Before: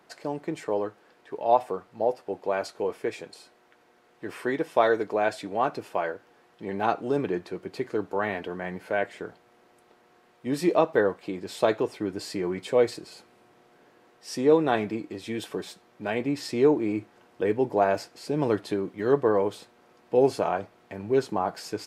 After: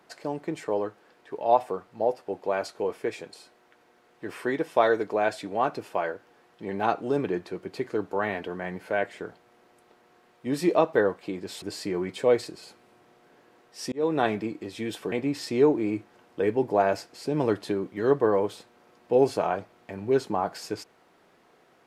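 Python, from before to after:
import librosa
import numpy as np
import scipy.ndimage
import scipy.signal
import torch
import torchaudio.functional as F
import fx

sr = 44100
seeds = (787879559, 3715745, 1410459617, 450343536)

y = fx.edit(x, sr, fx.cut(start_s=11.62, length_s=0.49),
    fx.fade_in_span(start_s=14.41, length_s=0.26),
    fx.cut(start_s=15.61, length_s=0.53), tone=tone)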